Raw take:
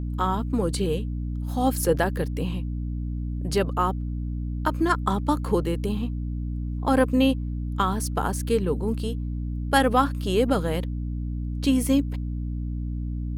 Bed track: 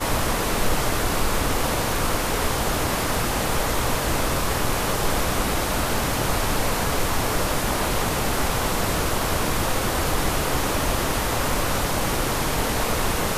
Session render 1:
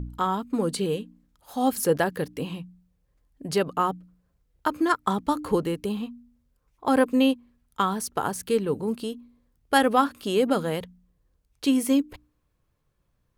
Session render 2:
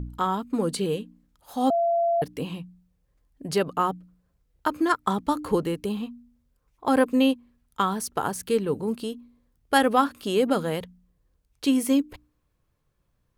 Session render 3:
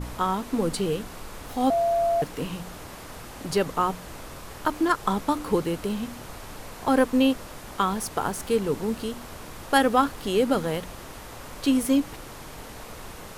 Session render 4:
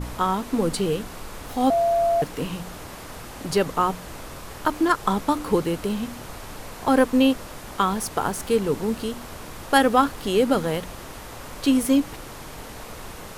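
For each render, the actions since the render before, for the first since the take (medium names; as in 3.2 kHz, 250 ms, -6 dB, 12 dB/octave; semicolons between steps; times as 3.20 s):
de-hum 60 Hz, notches 5
1.70–2.22 s: bleep 681 Hz -19.5 dBFS
add bed track -17.5 dB
trim +2.5 dB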